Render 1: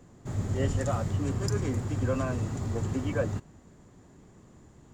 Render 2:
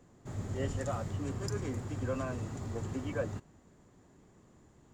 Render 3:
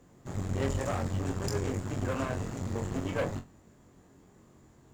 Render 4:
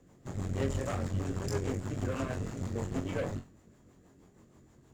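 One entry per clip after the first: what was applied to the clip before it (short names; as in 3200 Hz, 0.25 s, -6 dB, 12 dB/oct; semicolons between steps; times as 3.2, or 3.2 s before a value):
tone controls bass -3 dB, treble -1 dB; gain -5 dB
companded quantiser 8-bit; flutter echo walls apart 3.8 m, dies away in 0.22 s; added harmonics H 8 -17 dB, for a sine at -19.5 dBFS; gain +1.5 dB
rotary speaker horn 6.3 Hz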